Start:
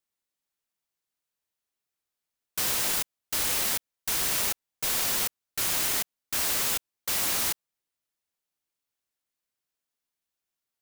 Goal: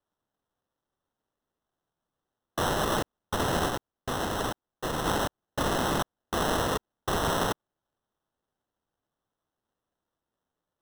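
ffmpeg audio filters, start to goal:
ffmpeg -i in.wav -filter_complex "[0:a]asettb=1/sr,asplit=3[link_01][link_02][link_03];[link_01]atrim=end=3.674[link_04];[link_02]atrim=start=3.67:end=5.06,asetpts=PTS-STARTPTS,afade=type=in:duration=0.004:curve=qsin,afade=type=out:start_time=1.386:duration=0.004:curve=qsin,highshelf=frequency=10000:gain=-7.5[link_05];[link_03]atrim=start=5.056[link_06];[link_04][link_05]acrossfade=duration=0.004:curve1=hsin:curve2=qsin[link_07];[link_07][link_06]acrossfade=duration=0.004:curve1=qsin:curve2=hsin,acrusher=samples=19:mix=1:aa=0.000001" out.wav

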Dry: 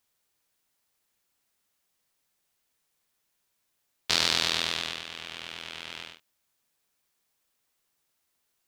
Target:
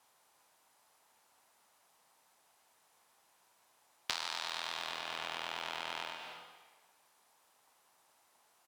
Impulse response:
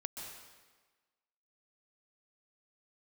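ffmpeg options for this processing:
-filter_complex "[0:a]highpass=frequency=140:poles=1,acrossover=split=860|7400[link_01][link_02][link_03];[link_01]alimiter=level_in=12.5dB:limit=-24dB:level=0:latency=1,volume=-12.5dB[link_04];[link_03]aecho=1:1:1:0.88[link_05];[link_04][link_02][link_05]amix=inputs=3:normalize=0,lowpass=12000,asplit=2[link_06][link_07];[1:a]atrim=start_sample=2205[link_08];[link_07][link_08]afir=irnorm=-1:irlink=0,volume=-3.5dB[link_09];[link_06][link_09]amix=inputs=2:normalize=0,acrusher=bits=5:mode=log:mix=0:aa=0.000001,equalizer=frequency=870:width_type=o:width=1.3:gain=13.5,acompressor=threshold=-38dB:ratio=6,volume=2dB"

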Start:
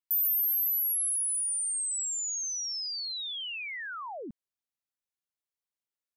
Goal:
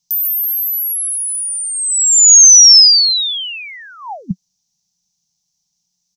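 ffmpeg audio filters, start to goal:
ffmpeg -i in.wav -af "firequalizer=gain_entry='entry(110,0);entry(180,15);entry(300,-29);entry(810,-5);entry(1300,-21);entry(5900,15);entry(8700,-11)':delay=0.05:min_phase=1,apsyclip=22.5dB,volume=-1.5dB" out.wav

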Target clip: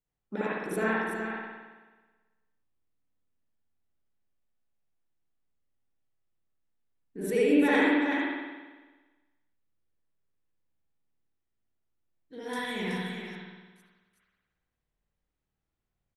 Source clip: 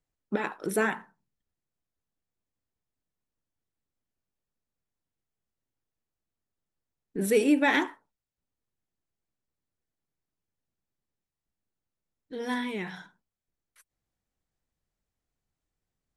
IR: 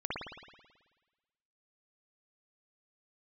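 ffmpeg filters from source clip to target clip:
-filter_complex "[0:a]asettb=1/sr,asplit=3[link_01][link_02][link_03];[link_01]atrim=end=12.534[link_04];[link_02]atrim=start=12.53:end=12.98,asetpts=PTS-STARTPTS,afade=type=in:duration=0.004:curve=qsin,afade=type=out:start_time=0.446:duration=0.004:curve=qsin,bass=frequency=250:gain=4,treble=frequency=4000:gain=15[link_05];[link_03]atrim=start=12.976[link_06];[link_04][link_05]acrossfade=duration=0.004:curve1=hsin:curve2=qsin[link_07];[link_07][link_06]acrossfade=duration=0.004:curve1=qsin:curve2=hsin,aecho=1:1:76|375:0.112|0.473[link_08];[1:a]atrim=start_sample=2205[link_09];[link_08][link_09]afir=irnorm=-1:irlink=0,volume=-5.5dB"

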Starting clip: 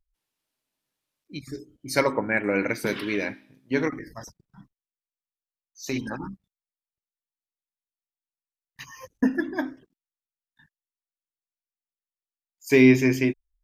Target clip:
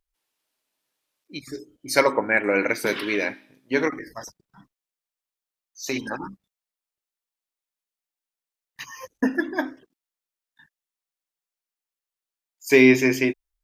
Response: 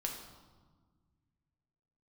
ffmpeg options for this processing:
-af "bass=frequency=250:gain=-11,treble=frequency=4000:gain=0,volume=4.5dB"

